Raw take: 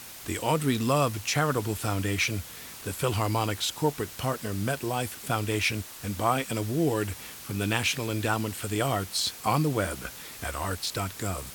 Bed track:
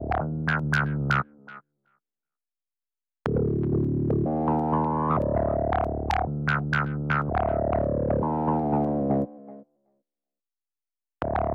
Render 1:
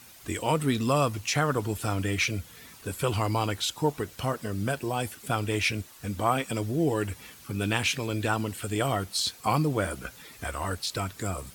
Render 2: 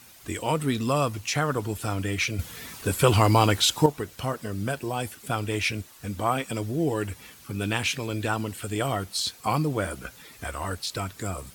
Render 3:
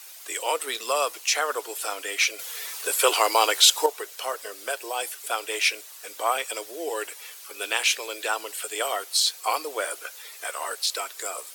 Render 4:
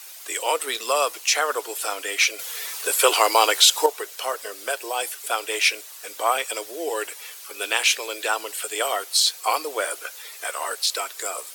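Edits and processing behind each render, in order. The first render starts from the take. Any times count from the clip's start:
denoiser 9 dB, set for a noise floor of -44 dBFS
2.39–3.86 gain +8 dB
steep high-pass 420 Hz 36 dB/oct; high shelf 2400 Hz +8 dB
gain +3 dB; limiter -3 dBFS, peak gain reduction 3 dB

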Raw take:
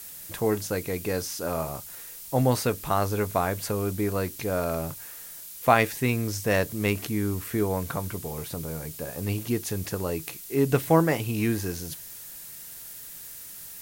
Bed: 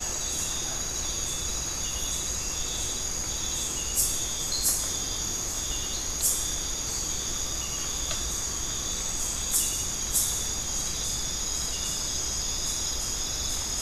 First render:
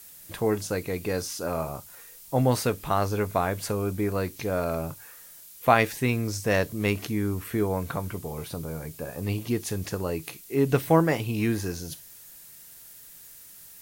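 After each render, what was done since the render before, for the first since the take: noise print and reduce 6 dB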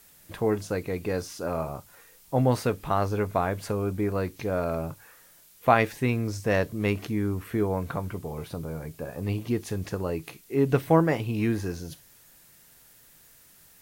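high shelf 3700 Hz -9 dB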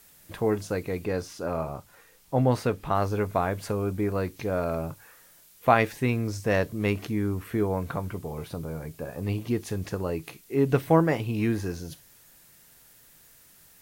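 1.05–2.95 high shelf 6000 Hz -6 dB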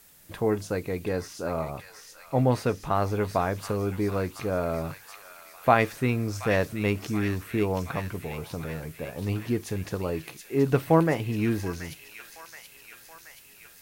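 thin delay 0.727 s, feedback 64%, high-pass 2000 Hz, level -5 dB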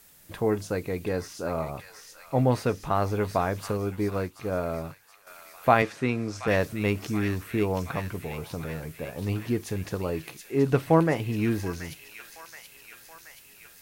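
3.77–5.27 upward expander, over -45 dBFS; 5.82–6.48 BPF 140–7200 Hz; 10.51–11.16 Bessel low-pass 12000 Hz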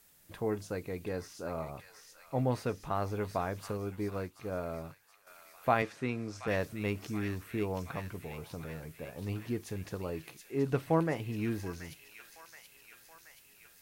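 gain -8 dB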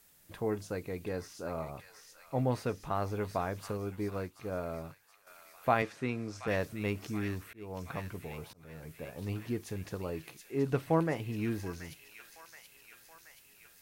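7.42–8.94 auto swell 0.387 s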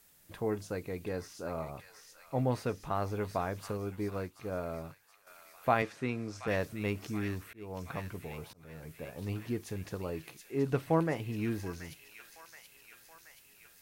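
nothing audible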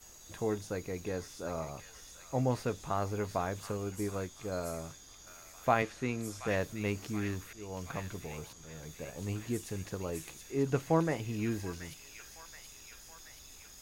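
add bed -24 dB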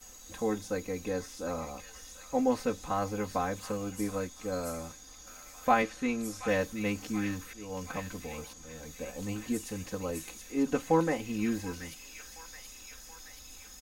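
comb 3.9 ms, depth 100%

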